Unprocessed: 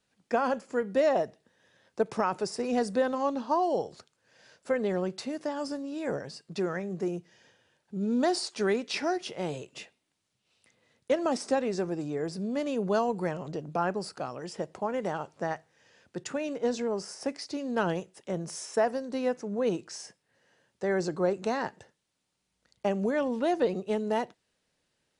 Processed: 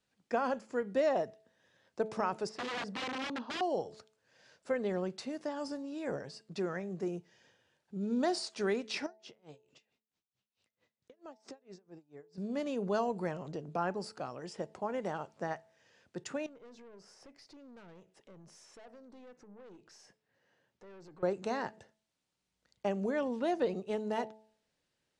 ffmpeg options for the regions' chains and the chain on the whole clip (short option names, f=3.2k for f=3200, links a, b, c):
-filter_complex "[0:a]asettb=1/sr,asplit=3[a][b][c];[a]atrim=end=2.494[d];[b]atrim=start=2.49:end=3.61,asetpts=PTS-STARTPTS,afade=t=in:d=0.004:c=qsin,afade=t=out:st=1.116:d=0.004:c=qsin,aeval=exprs='(mod(21.1*val(0)+1,2)-1)/21.1':c=same,highpass=130,lowpass=3.8k[e];[c]atrim=start=3.606[f];[d][e]acrossfade=d=0.004:c1=hsin:c2=qsin[g];[g][f]acrossfade=d=0.004:c1=qsin:c2=hsin,asettb=1/sr,asplit=3[h][i][j];[h]atrim=end=9.064[k];[i]atrim=start=9.06:end=12.38,asetpts=PTS-STARTPTS,afade=t=in:d=0.004:c=qsin,afade=t=out:st=3.316:d=0.004:c=qsin,lowpass=f=7.5k:w=0.5412,lowpass=f=7.5k:w=1.3066,acompressor=threshold=-40dB:ratio=4:attack=3.2:release=140:knee=1:detection=peak,aeval=exprs='val(0)*pow(10,-29*(0.5-0.5*cos(2*PI*4.5*n/s))/20)':c=same[l];[j]atrim=start=12.376[m];[k][l]acrossfade=d=0.004:c1=hsin:c2=qsin[n];[n][m]acrossfade=d=0.004:c1=qsin:c2=hsin,asettb=1/sr,asplit=3[o][p][q];[o]atrim=end=16.464[r];[p]atrim=start=16.46:end=21.23,asetpts=PTS-STARTPTS,afade=t=in:d=0.004:c=qsin,afade=t=out:st=4.766:d=0.004:c=qsin,highshelf=f=6.2k:g=-10,acompressor=threshold=-52dB:ratio=2:attack=3.2:release=140:knee=1:detection=peak,aeval=exprs='(tanh(178*val(0)+0.3)-tanh(0.3))/178':c=same[s];[q]atrim=start=21.226[t];[r][s]acrossfade=d=0.004:c1=hsin:c2=qsin[u];[u][t]acrossfade=d=0.004:c1=qsin:c2=hsin,lowpass=9.1k,bandreject=f=217.6:t=h:w=4,bandreject=f=435.2:t=h:w=4,bandreject=f=652.8:t=h:w=4,bandreject=f=870.4:t=h:w=4,volume=-5dB"